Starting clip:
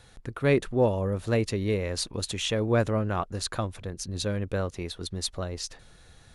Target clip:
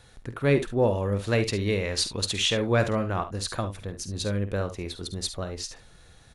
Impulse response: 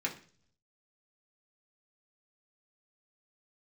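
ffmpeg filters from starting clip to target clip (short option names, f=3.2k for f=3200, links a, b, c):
-filter_complex "[0:a]asettb=1/sr,asplit=3[a][b][c];[a]atrim=end=0.954[d];[b]atrim=start=0.95:end=3.06,asetpts=PTS-STARTPTS,afade=t=in:d=0.004:c=qsin,afade=t=out:st=2.106:d=0.004:c=qsin,equalizer=f=3.3k:w=0.44:g=6[e];[c]atrim=start=3.056[f];[d][e]acrossfade=d=0.004:c1=hsin:c2=qsin[g];[g][f]acrossfade=d=0.004:c1=qsin:c2=hsin,aecho=1:1:50|70:0.266|0.2"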